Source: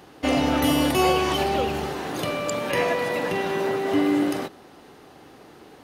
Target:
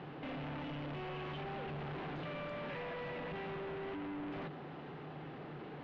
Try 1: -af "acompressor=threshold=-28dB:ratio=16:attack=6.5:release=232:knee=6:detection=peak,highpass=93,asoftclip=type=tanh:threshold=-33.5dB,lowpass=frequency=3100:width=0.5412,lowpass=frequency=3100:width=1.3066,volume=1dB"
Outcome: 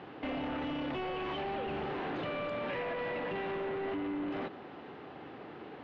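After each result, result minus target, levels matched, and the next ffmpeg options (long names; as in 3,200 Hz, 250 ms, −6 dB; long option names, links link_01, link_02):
125 Hz band −9.0 dB; soft clipping: distortion −6 dB
-af "acompressor=threshold=-28dB:ratio=16:attack=6.5:release=232:knee=6:detection=peak,highpass=93,equalizer=frequency=150:width=4.2:gain=14.5,asoftclip=type=tanh:threshold=-33.5dB,lowpass=frequency=3100:width=0.5412,lowpass=frequency=3100:width=1.3066,volume=1dB"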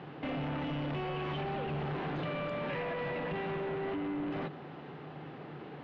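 soft clipping: distortion −5 dB
-af "acompressor=threshold=-28dB:ratio=16:attack=6.5:release=232:knee=6:detection=peak,highpass=93,equalizer=frequency=150:width=4.2:gain=14.5,asoftclip=type=tanh:threshold=-42dB,lowpass=frequency=3100:width=0.5412,lowpass=frequency=3100:width=1.3066,volume=1dB"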